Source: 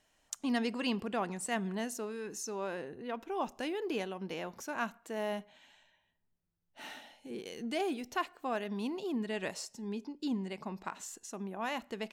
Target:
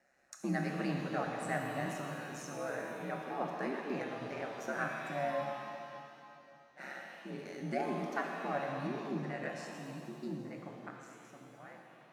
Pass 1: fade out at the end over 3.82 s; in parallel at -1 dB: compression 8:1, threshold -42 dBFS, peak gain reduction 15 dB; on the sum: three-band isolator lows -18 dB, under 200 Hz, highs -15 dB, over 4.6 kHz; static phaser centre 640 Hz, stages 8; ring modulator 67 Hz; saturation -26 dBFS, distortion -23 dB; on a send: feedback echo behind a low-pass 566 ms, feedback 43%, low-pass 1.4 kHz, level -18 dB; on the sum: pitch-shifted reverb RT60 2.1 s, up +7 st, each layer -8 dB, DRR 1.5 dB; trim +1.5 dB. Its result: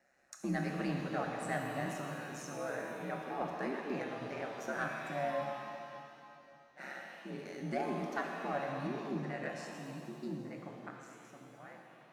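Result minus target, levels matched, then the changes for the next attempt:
saturation: distortion +14 dB
change: saturation -18 dBFS, distortion -37 dB

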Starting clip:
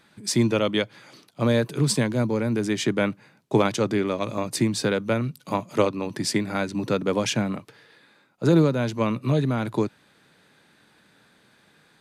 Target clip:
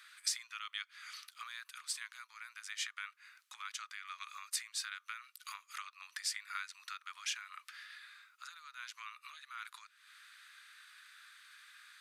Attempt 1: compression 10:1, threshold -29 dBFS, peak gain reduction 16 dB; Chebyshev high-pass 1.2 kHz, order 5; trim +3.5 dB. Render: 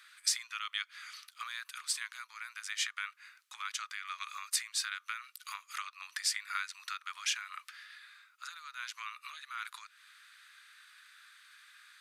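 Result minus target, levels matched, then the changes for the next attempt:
compression: peak gain reduction -5.5 dB
change: compression 10:1, threshold -35 dBFS, peak gain reduction 21.5 dB

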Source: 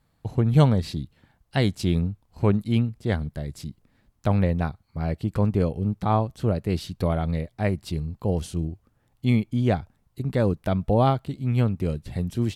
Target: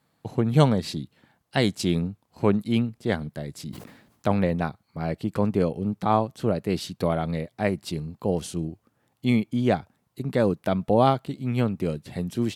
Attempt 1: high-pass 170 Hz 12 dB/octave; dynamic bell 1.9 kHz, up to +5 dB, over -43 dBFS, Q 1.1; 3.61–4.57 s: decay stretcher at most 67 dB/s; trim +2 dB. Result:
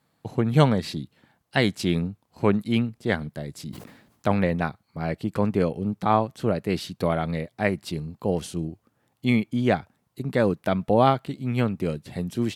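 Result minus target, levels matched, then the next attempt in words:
2 kHz band +3.5 dB
high-pass 170 Hz 12 dB/octave; dynamic bell 7.2 kHz, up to +5 dB, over -43 dBFS, Q 1.1; 3.61–4.57 s: decay stretcher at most 67 dB/s; trim +2 dB

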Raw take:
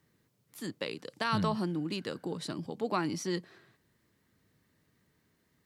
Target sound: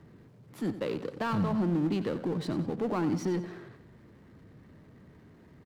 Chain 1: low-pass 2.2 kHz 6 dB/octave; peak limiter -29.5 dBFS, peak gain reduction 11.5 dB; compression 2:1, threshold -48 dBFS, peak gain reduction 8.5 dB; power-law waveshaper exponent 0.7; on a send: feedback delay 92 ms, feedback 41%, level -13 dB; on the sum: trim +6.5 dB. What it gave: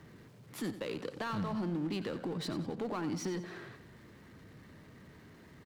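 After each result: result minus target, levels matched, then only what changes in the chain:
compression: peak gain reduction +8.5 dB; 2 kHz band +4.5 dB
remove: compression 2:1, threshold -48 dBFS, peak gain reduction 8.5 dB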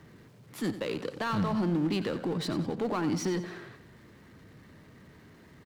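2 kHz band +3.5 dB
change: low-pass 640 Hz 6 dB/octave

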